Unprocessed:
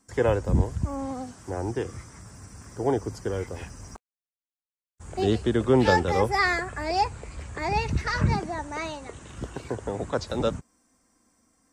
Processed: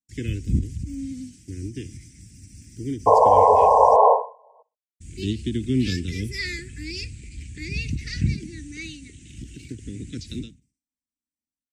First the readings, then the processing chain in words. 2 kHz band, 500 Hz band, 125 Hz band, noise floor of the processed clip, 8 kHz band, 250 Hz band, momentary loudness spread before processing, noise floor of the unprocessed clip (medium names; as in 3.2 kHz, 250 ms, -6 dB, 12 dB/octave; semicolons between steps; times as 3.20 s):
-6.0 dB, +4.5 dB, +0.5 dB, under -85 dBFS, +1.0 dB, 0.0 dB, 19 LU, under -85 dBFS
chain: elliptic band-stop 300–2300 Hz, stop band 60 dB; expander -44 dBFS; painted sound noise, 3.06–4.63 s, 420–1100 Hz -16 dBFS; feedback delay 62 ms, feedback 32%, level -23 dB; endings held to a fixed fall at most 160 dB/s; trim +2 dB